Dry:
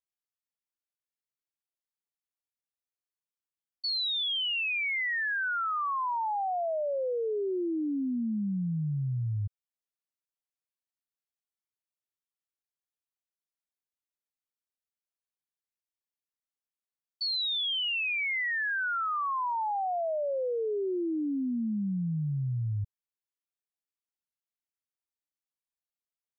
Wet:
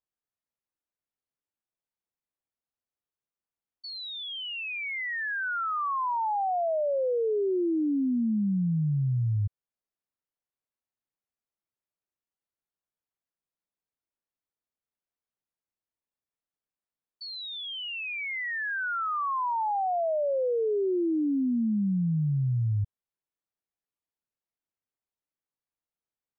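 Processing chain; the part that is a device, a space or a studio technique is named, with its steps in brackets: through cloth (treble shelf 2.6 kHz -18 dB); trim +4.5 dB

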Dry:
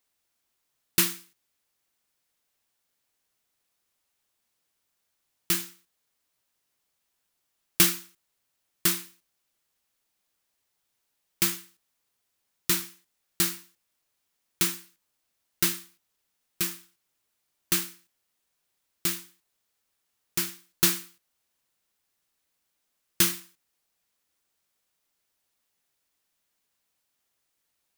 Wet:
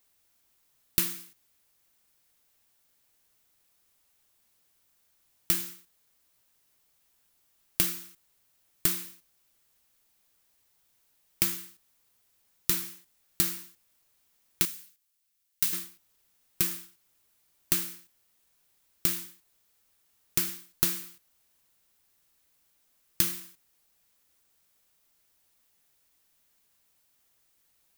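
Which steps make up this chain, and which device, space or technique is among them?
14.65–15.73 s: amplifier tone stack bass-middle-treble 5-5-5; ASMR close-microphone chain (bass shelf 130 Hz +6.5 dB; compression 8:1, threshold -31 dBFS, peak gain reduction 17 dB; treble shelf 11 kHz +6.5 dB); trim +4.5 dB

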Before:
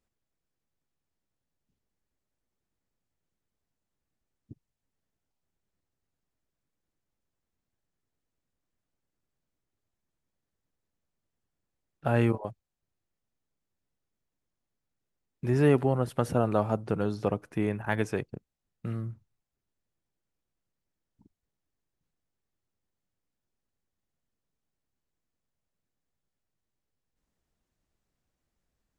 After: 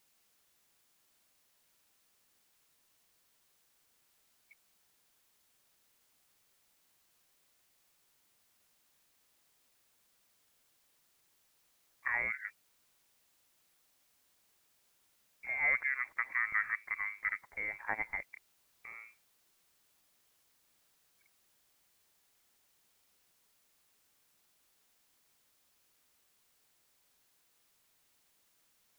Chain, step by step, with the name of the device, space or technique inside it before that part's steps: scrambled radio voice (band-pass 380–2600 Hz; frequency inversion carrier 2.5 kHz; white noise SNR 27 dB); trim -5 dB

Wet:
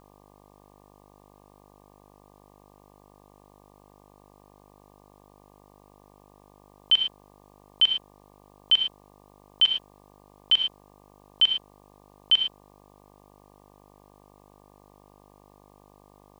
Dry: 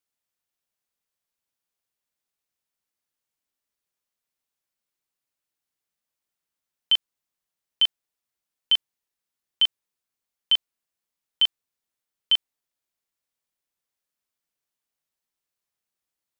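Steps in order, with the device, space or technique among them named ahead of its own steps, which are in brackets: low-pass 5.3 kHz; 9.65–10.54 s: comb 6.6 ms, depth 66%; gated-style reverb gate 130 ms rising, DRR 4 dB; video cassette with head-switching buzz (mains buzz 50 Hz, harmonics 24, -56 dBFS -1 dB/octave; white noise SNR 38 dB)

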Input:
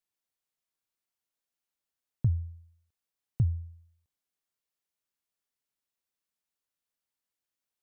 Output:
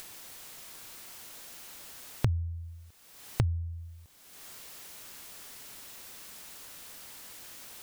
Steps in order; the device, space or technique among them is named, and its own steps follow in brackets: upward and downward compression (upward compressor, threshold -45 dBFS; compression, threshold -45 dBFS, peak gain reduction 21.5 dB); trim +18 dB

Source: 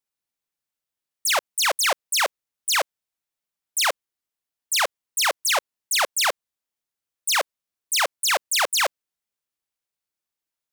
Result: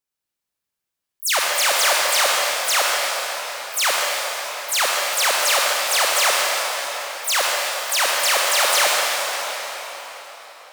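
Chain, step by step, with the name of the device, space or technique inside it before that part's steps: shimmer-style reverb (harmony voices +12 st -8 dB; reverberation RT60 4.6 s, pre-delay 43 ms, DRR -3.5 dB)

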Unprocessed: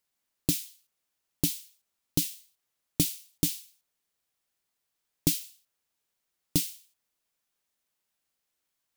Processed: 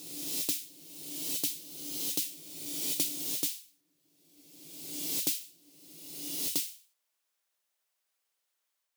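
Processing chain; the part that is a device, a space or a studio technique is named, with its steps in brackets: ghost voice (reverse; reverberation RT60 1.8 s, pre-delay 75 ms, DRR -1 dB; reverse; high-pass 450 Hz 12 dB/octave); trim -3 dB

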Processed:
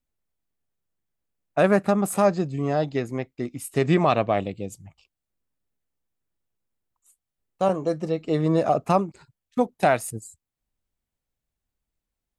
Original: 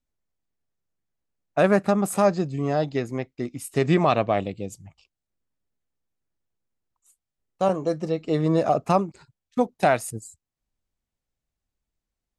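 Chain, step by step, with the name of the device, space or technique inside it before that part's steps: exciter from parts (in parallel at -7.5 dB: high-pass 4.7 kHz 12 dB/octave + saturation -32 dBFS, distortion -12 dB + high-pass 4.9 kHz 12 dB/octave)

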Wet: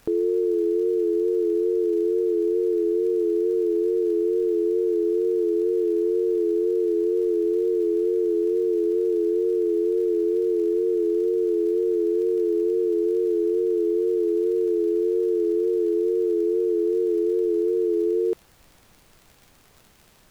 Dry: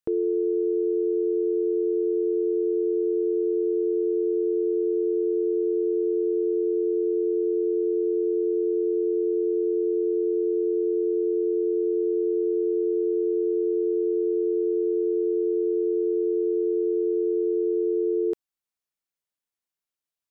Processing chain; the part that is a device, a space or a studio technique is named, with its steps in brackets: vinyl LP (wow and flutter; crackle; pink noise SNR 34 dB); trim +2 dB

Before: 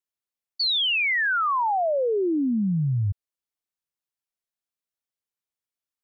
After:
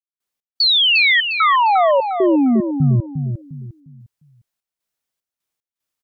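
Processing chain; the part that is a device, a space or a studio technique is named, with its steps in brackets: trance gate with a delay (trance gate ".x.xxx.xxx.xx" 75 bpm -60 dB; feedback delay 353 ms, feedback 32%, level -7.5 dB); trim +9 dB

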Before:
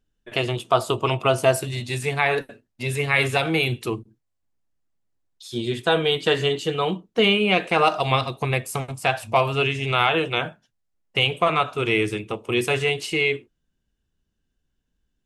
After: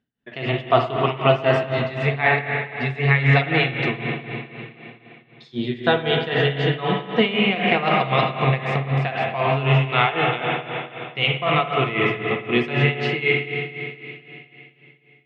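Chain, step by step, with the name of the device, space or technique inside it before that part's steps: combo amplifier with spring reverb and tremolo (spring tank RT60 3.3 s, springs 51/58 ms, chirp 75 ms, DRR 0 dB; tremolo 3.9 Hz, depth 78%; cabinet simulation 110–4300 Hz, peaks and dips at 140 Hz +9 dB, 240 Hz +8 dB, 700 Hz +4 dB, 1.9 kHz +9 dB)

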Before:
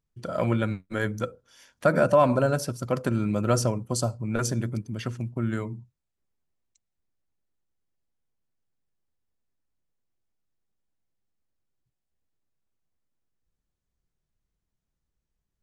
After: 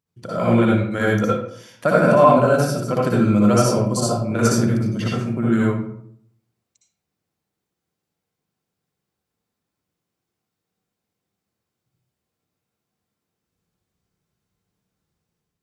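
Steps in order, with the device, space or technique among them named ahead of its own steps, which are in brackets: far laptop microphone (reverberation RT60 0.70 s, pre-delay 56 ms, DRR -5 dB; high-pass 110 Hz; level rider gain up to 4 dB)

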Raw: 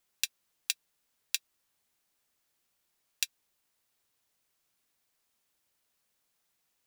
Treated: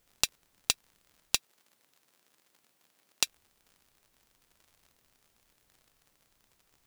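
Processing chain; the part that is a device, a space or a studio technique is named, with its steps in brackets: record under a worn stylus (tracing distortion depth 0.027 ms; crackle -52 dBFS; pink noise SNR 34 dB); 1.36–3.24 s: high-pass 200 Hz 12 dB/octave; trim +3.5 dB

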